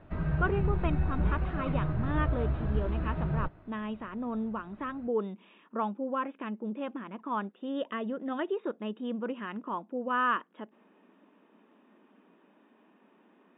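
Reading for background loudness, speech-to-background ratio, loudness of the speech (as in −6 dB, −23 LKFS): −32.0 LKFS, −3.0 dB, −35.0 LKFS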